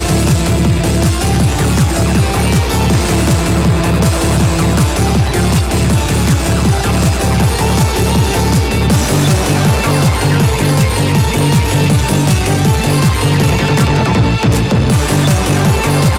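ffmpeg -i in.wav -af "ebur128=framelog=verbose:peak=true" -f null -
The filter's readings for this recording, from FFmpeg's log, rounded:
Integrated loudness:
  I:         -12.1 LUFS
  Threshold: -22.1 LUFS
Loudness range:
  LRA:         0.7 LU
  Threshold: -32.1 LUFS
  LRA low:   -12.5 LUFS
  LRA high:  -11.8 LUFS
True peak:
  Peak:       -3.0 dBFS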